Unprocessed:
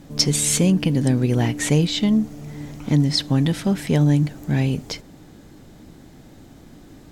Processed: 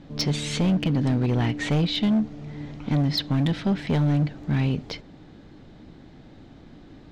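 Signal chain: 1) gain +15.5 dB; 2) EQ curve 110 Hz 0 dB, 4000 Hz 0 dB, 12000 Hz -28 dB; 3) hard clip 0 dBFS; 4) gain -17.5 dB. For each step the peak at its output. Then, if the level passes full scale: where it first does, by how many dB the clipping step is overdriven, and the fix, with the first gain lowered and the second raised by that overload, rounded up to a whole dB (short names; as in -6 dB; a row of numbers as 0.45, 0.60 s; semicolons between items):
+12.5, +9.0, 0.0, -17.5 dBFS; step 1, 9.0 dB; step 1 +6.5 dB, step 4 -8.5 dB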